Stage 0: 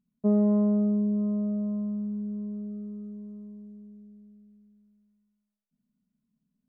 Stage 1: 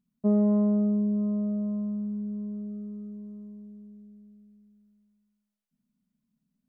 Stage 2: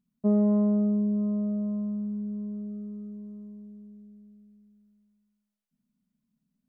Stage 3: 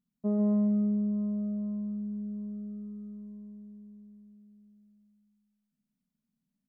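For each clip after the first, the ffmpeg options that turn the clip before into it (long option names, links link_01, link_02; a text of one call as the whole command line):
ffmpeg -i in.wav -af "bandreject=frequency=450:width=12" out.wav
ffmpeg -i in.wav -af anull out.wav
ffmpeg -i in.wav -af "aecho=1:1:144|288|432|576|720|864|1008:0.447|0.259|0.15|0.0872|0.0505|0.0293|0.017,volume=-6dB" out.wav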